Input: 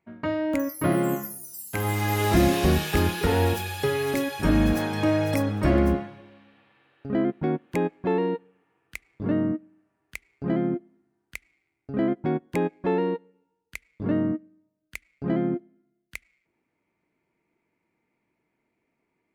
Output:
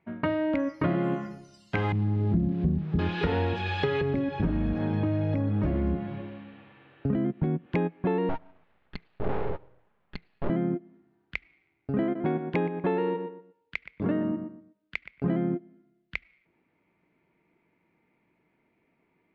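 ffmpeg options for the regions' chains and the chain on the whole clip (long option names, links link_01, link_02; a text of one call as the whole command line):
ffmpeg -i in.wav -filter_complex "[0:a]asettb=1/sr,asplit=3[link_01][link_02][link_03];[link_01]atrim=end=1.924[link_04];[link_02]atrim=start=1.92:end=2.99,asetpts=PTS-STARTPTS,afade=type=in:duration=0.004:curve=qsin,afade=type=out:start_time=1.066:duration=0.004:curve=qsin,bandpass=frequency=190:width_type=q:width=1.7,aemphasis=mode=reproduction:type=bsi,aeval=exprs='val(0)*gte(abs(val(0)),0.01)':channel_layout=same[link_05];[link_03]atrim=start=2.986[link_06];[link_04][link_05]acrossfade=duration=0.004:curve1=hsin:curve2=qsin[link_07];[link_07][link_06]acrossfade=duration=0.004:curve1=qsin:curve2=hsin,asettb=1/sr,asplit=3[link_08][link_09][link_10];[link_08]atrim=end=4.014[link_11];[link_09]atrim=start=4.01:end=7.66,asetpts=PTS-STARTPTS,afade=type=in:duration=0.004:curve=qsin,afade=type=out:start_time=3.646:duration=0.004:curve=qsin,lowshelf=frequency=390:gain=8,acrossover=split=190|740|2400[link_12][link_13][link_14][link_15];[link_12]acompressor=threshold=-27dB:ratio=3[link_16];[link_13]acompressor=threshold=-30dB:ratio=3[link_17];[link_14]acompressor=threshold=-47dB:ratio=3[link_18];[link_15]acompressor=threshold=-56dB:ratio=3[link_19];[link_16][link_17][link_18][link_19]amix=inputs=4:normalize=0,asoftclip=type=hard:threshold=-17.5dB[link_20];[link_10]atrim=start=7.656[link_21];[link_11][link_20]acrossfade=duration=0.004:curve1=hsin:curve2=qsin[link_22];[link_22][link_21]acrossfade=duration=0.004:curve1=qsin:curve2=hsin,asettb=1/sr,asplit=3[link_23][link_24][link_25];[link_23]atrim=end=8.294[link_26];[link_24]atrim=start=8.29:end=10.5,asetpts=PTS-STARTPTS,afade=type=in:duration=0.004:curve=qsin,afade=type=out:start_time=2.206:duration=0.004:curve=qsin,lowpass=1700,aecho=1:1:4.8:0.54,atrim=end_sample=97461,aeval=exprs='abs(val(0))':channel_layout=same[link_27];[link_25]atrim=start=10.496[link_28];[link_26][link_27]acrossfade=duration=0.004:curve1=hsin:curve2=qsin[link_29];[link_29][link_28]acrossfade=duration=0.004:curve1=qsin:curve2=hsin,asettb=1/sr,asplit=3[link_30][link_31][link_32];[link_30]atrim=end=12.034[link_33];[link_31]atrim=start=12.03:end=15.24,asetpts=PTS-STARTPTS,afade=type=in:duration=0.004:curve=qsin,afade=type=out:start_time=3.206:duration=0.004:curve=qsin,lowshelf=frequency=130:gain=-11,asplit=2[link_34][link_35];[link_35]adelay=121,lowpass=frequency=2500:poles=1,volume=-10.5dB,asplit=2[link_36][link_37];[link_37]adelay=121,lowpass=frequency=2500:poles=1,volume=0.25,asplit=2[link_38][link_39];[link_39]adelay=121,lowpass=frequency=2500:poles=1,volume=0.25[link_40];[link_34][link_36][link_38][link_40]amix=inputs=4:normalize=0,atrim=end_sample=141561[link_41];[link_32]atrim=start=15.236[link_42];[link_33][link_41]acrossfade=duration=0.004:curve1=hsin:curve2=qsin[link_43];[link_43][link_42]acrossfade=duration=0.004:curve1=qsin:curve2=hsin,lowpass=frequency=3700:width=0.5412,lowpass=frequency=3700:width=1.3066,equalizer=frequency=170:width_type=o:width=0.24:gain=5.5,acompressor=threshold=-29dB:ratio=5,volume=5dB" out.wav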